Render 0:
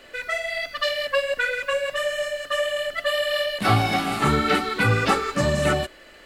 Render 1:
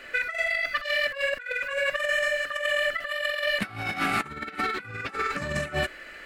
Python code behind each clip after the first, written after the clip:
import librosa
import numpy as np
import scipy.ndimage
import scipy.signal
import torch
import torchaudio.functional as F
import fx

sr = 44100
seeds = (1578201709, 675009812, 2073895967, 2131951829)

y = fx.band_shelf(x, sr, hz=1800.0, db=8.5, octaves=1.2)
y = fx.over_compress(y, sr, threshold_db=-23.0, ratio=-0.5)
y = F.gain(torch.from_numpy(y), -5.0).numpy()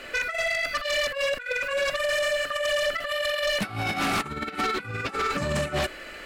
y = fx.peak_eq(x, sr, hz=1800.0, db=-7.0, octaves=0.75)
y = fx.fold_sine(y, sr, drive_db=9, ceiling_db=-15.5)
y = F.gain(torch.from_numpy(y), -6.0).numpy()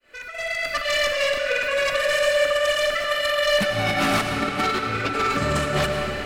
y = fx.fade_in_head(x, sr, length_s=0.83)
y = fx.rev_freeverb(y, sr, rt60_s=4.4, hf_ratio=0.75, predelay_ms=55, drr_db=2.5)
y = F.gain(torch.from_numpy(y), 3.0).numpy()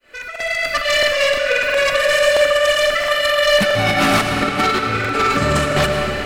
y = fx.buffer_crackle(x, sr, first_s=0.31, period_s=0.67, block=2048, kind='repeat')
y = F.gain(torch.from_numpy(y), 6.0).numpy()